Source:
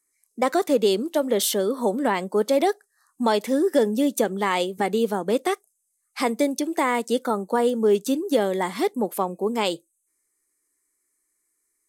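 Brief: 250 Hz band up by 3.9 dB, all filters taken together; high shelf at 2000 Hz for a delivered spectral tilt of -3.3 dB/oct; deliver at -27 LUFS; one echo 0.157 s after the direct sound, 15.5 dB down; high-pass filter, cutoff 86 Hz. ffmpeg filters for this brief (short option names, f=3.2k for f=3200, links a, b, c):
-af "highpass=86,equalizer=f=250:t=o:g=4.5,highshelf=f=2k:g=8,aecho=1:1:157:0.168,volume=-6.5dB"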